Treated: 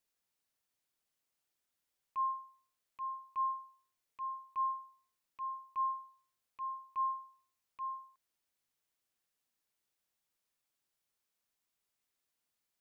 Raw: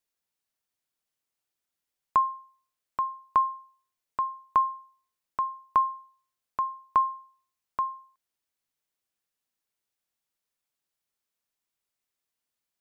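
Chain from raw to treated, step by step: rattling part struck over -44 dBFS, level -18 dBFS; auto swell 0.154 s

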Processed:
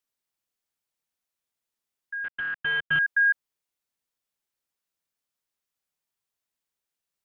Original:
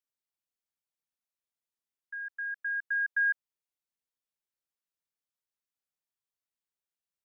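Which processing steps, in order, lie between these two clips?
2.24–2.99 CVSD 16 kbps; gain +6 dB

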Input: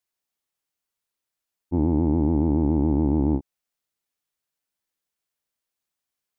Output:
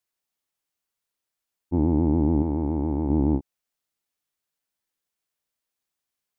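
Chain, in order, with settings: 2.42–3.1 bell 160 Hz -6 dB 2.8 oct

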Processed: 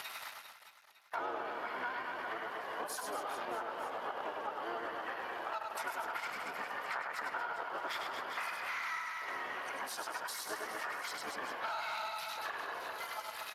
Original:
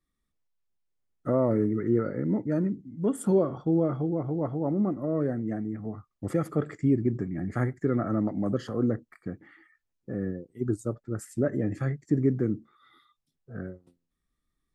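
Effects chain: zero-crossing step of -30.5 dBFS; speed mistake 44.1 kHz file played as 48 kHz; spectral noise reduction 14 dB; HPF 1100 Hz 24 dB/oct; high shelf 2900 Hz -7 dB; harmoniser -12 st -6 dB, -7 st -1 dB, +3 st -17 dB; on a send: reverse bouncing-ball echo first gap 0.1 s, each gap 1.3×, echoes 5; on the sum: compressor 5:1, threshold -52 dBFS, peak gain reduction 19 dB; gain +13.5 dB; Speex 28 kbps 32000 Hz

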